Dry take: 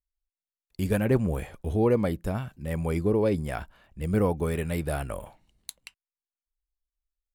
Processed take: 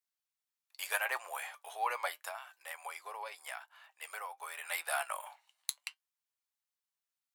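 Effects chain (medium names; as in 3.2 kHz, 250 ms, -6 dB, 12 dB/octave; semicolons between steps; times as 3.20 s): steep high-pass 780 Hz 36 dB/octave; 2.28–4.64 s: compression 6:1, threshold -44 dBFS, peak gain reduction 12.5 dB; flange 0.81 Hz, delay 5.6 ms, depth 2.1 ms, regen +67%; trim +7.5 dB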